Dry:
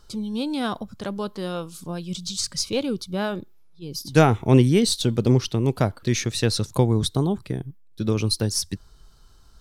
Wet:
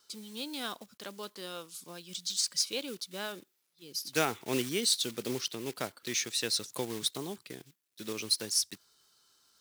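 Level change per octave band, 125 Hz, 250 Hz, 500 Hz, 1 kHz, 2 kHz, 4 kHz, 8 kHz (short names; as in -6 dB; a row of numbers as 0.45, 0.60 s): -26.0, -17.0, -13.5, -12.0, -6.5, -3.5, -2.5 dB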